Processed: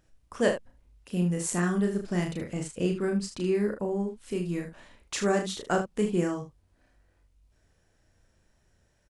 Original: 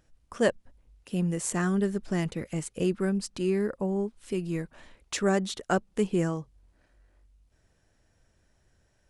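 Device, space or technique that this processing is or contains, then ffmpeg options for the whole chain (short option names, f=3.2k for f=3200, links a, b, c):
slapback doubling: -filter_complex "[0:a]asplit=3[a][b][c];[b]adelay=34,volume=-4dB[d];[c]adelay=76,volume=-9.5dB[e];[a][d][e]amix=inputs=3:normalize=0,asettb=1/sr,asplit=3[f][g][h];[f]atrim=end=2.444[i];[g]atrim=start=2.44:end=3.55,asetpts=PTS-STARTPTS,afade=t=in:d=0.004:c=qsin,afade=t=out:st=1.106:d=0.004:c=qsin,lowpass=8.8k[j];[h]atrim=start=3.546[k];[i][j]acrossfade=d=0.004:c1=hsin:c2=qsin[l];[l][k]acrossfade=d=0.004:c1=qsin:c2=hsin,volume=-1.5dB"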